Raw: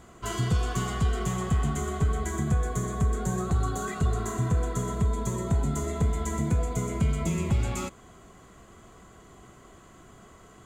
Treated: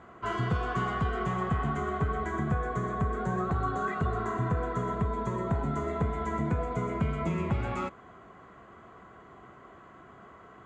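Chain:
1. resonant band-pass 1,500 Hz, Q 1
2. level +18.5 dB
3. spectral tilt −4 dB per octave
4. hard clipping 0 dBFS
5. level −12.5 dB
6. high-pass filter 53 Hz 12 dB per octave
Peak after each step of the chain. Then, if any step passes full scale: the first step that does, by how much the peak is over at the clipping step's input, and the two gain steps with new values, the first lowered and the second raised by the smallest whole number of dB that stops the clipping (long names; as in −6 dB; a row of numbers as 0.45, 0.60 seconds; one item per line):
−26.0, −7.5, −3.5, −3.5, −16.0, −15.0 dBFS
no step passes full scale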